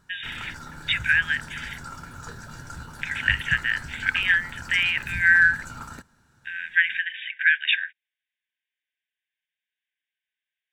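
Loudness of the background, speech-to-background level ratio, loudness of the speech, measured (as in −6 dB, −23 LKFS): −38.5 LKFS, 16.5 dB, −22.0 LKFS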